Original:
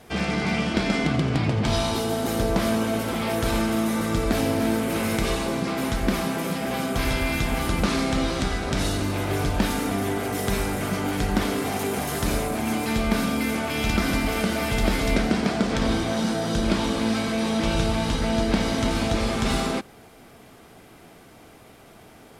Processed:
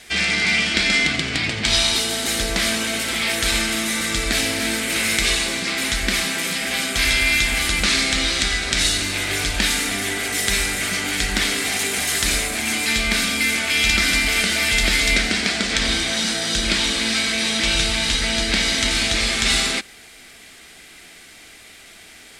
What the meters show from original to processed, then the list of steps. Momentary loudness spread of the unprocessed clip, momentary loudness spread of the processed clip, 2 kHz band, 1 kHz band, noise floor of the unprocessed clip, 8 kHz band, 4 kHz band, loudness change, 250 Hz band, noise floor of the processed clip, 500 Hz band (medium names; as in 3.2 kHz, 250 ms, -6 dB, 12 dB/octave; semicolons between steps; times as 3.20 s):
3 LU, 5 LU, +11.0 dB, -2.0 dB, -49 dBFS, +13.0 dB, +13.0 dB, +6.0 dB, -4.5 dB, -44 dBFS, -4.0 dB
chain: graphic EQ 125/250/500/1000/2000/4000/8000 Hz -11/-3/-5/-7/+10/+8/+11 dB; trim +2 dB